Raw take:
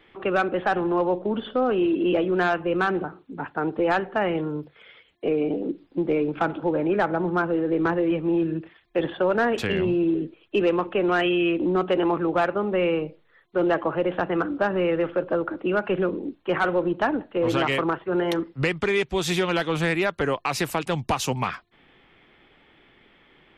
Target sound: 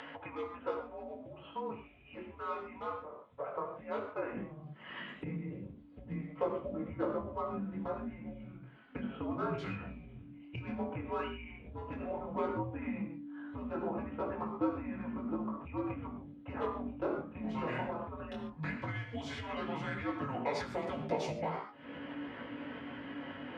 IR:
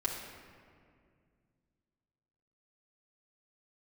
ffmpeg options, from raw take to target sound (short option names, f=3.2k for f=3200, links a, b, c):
-filter_complex "[0:a]tiltshelf=f=1.1k:g=7[a];[1:a]atrim=start_sample=2205,atrim=end_sample=6615[b];[a][b]afir=irnorm=-1:irlink=0,flanger=delay=16:depth=7.9:speed=0.14,acompressor=mode=upward:threshold=-31dB:ratio=2.5,afreqshift=-290,acompressor=threshold=-38dB:ratio=2.5,asetnsamples=n=441:p=0,asendcmd='4.33 highpass f 270',highpass=540,lowpass=5.7k,volume=3.5dB"